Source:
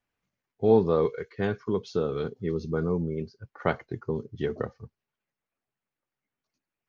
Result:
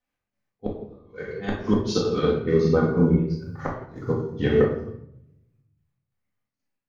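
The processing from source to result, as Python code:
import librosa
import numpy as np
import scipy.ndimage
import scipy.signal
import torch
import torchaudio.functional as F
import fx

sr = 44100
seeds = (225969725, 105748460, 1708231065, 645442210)

y = fx.bass_treble(x, sr, bass_db=-1, treble_db=12, at=(3.33, 4.28))
y = fx.doubler(y, sr, ms=39.0, db=-3.5)
y = fx.step_gate(y, sr, bpm=91, pattern='x.x.xx.x.xx', floor_db=-12.0, edge_ms=4.5)
y = fx.gate_flip(y, sr, shuts_db=-15.0, range_db=-32)
y = fx.high_shelf(y, sr, hz=3000.0, db=10.5, at=(1.43, 2.19))
y = fx.room_shoebox(y, sr, seeds[0], volume_m3=360.0, walls='mixed', distance_m=2.0)
y = fx.upward_expand(y, sr, threshold_db=-44.0, expansion=1.5)
y = y * 10.0 ** (6.0 / 20.0)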